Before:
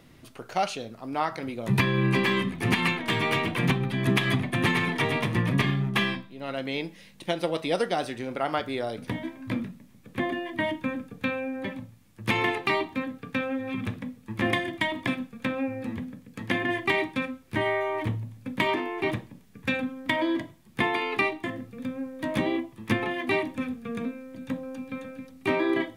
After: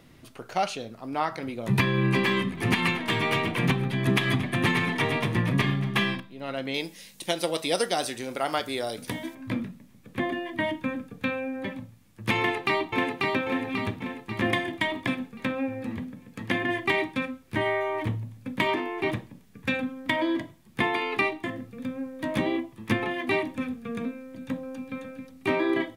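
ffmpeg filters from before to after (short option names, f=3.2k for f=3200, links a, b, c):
-filter_complex "[0:a]asettb=1/sr,asplit=3[a][b][c];[a]atrim=end=2.344[d];[b]atrim=start=2.34:end=6.2,asetpts=PTS-STARTPTS,afade=t=in:d=0.004:c=qsin,afade=t=out:st=3.856:d=0.004:c=qsin,aecho=1:1:231:0.158,atrim=end_sample=170226[e];[c]atrim=start=6.196[f];[d][e]acrossfade=d=0.004:c1=hsin:c2=qsin[g];[g][f]acrossfade=d=0.004:c1=qsin:c2=hsin,asettb=1/sr,asplit=3[h][i][j];[h]atrim=end=6.744[k];[i]atrim=start=6.74:end=9.35,asetpts=PTS-STARTPTS,afade=t=in:d=0.004:c=qsin,afade=t=out:st=2.606:d=0.004:c=qsin,bass=f=250:g=-4,treble=f=4k:g=13[l];[j]atrim=start=9.346[m];[k][l]acrossfade=d=0.004:c1=hsin:c2=qsin[n];[n][m]acrossfade=d=0.004:c1=qsin:c2=hsin,asplit=2[o][p];[p]afade=t=in:st=12.38:d=0.01,afade=t=out:st=13.24:d=0.01,aecho=0:1:540|1080|1620|2160|2700|3240|3780:0.794328|0.397164|0.198582|0.099291|0.0496455|0.0248228|0.0124114[q];[o][q]amix=inputs=2:normalize=0"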